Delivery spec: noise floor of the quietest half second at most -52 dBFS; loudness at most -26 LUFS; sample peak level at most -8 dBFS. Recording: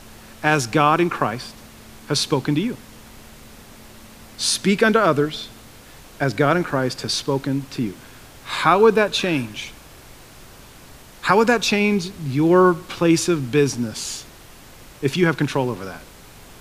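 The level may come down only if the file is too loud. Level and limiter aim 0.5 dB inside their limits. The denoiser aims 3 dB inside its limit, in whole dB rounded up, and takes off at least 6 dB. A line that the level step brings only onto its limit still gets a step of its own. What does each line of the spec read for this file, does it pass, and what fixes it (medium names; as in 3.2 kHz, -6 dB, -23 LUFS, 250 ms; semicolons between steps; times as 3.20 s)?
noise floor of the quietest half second -44 dBFS: fail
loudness -19.5 LUFS: fail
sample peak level -2.0 dBFS: fail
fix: noise reduction 6 dB, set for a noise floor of -44 dBFS; trim -7 dB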